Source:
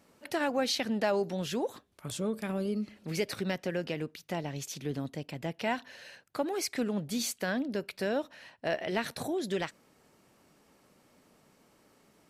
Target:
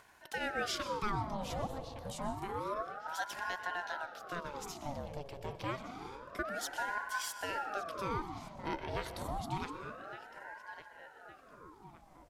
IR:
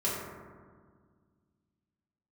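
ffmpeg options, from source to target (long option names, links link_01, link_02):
-filter_complex "[0:a]equalizer=frequency=2200:width_type=o:width=0.28:gain=-6.5,asplit=2[link_01][link_02];[link_02]adelay=1162,lowpass=frequency=2300:poles=1,volume=-11dB,asplit=2[link_03][link_04];[link_04]adelay=1162,lowpass=frequency=2300:poles=1,volume=0.5,asplit=2[link_05][link_06];[link_06]adelay=1162,lowpass=frequency=2300:poles=1,volume=0.5,asplit=2[link_07][link_08];[link_08]adelay=1162,lowpass=frequency=2300:poles=1,volume=0.5,asplit=2[link_09][link_10];[link_10]adelay=1162,lowpass=frequency=2300:poles=1,volume=0.5[link_11];[link_01][link_03][link_05][link_07][link_09][link_11]amix=inputs=6:normalize=0,asplit=2[link_12][link_13];[1:a]atrim=start_sample=2205,asetrate=27342,aresample=44100,adelay=121[link_14];[link_13][link_14]afir=irnorm=-1:irlink=0,volume=-20.5dB[link_15];[link_12][link_15]amix=inputs=2:normalize=0,acompressor=mode=upward:threshold=-47dB:ratio=2.5,aeval=exprs='val(0)*sin(2*PI*770*n/s+770*0.65/0.28*sin(2*PI*0.28*n/s))':channel_layout=same,volume=-4dB"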